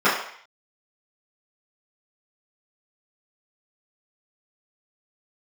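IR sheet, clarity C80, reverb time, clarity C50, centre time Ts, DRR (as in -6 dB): 8.0 dB, 0.60 s, 5.0 dB, 41 ms, -14.0 dB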